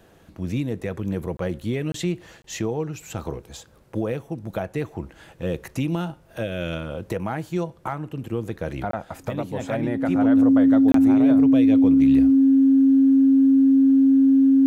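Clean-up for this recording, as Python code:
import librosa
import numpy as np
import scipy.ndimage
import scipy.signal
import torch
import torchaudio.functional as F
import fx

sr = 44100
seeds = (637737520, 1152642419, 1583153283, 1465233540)

y = fx.notch(x, sr, hz=270.0, q=30.0)
y = fx.fix_interpolate(y, sr, at_s=(1.37, 1.92, 2.42, 8.91, 10.92), length_ms=23.0)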